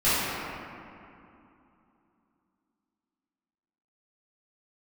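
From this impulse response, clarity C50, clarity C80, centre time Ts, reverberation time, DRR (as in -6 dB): -5.0 dB, -2.5 dB, 0.187 s, 2.7 s, -15.5 dB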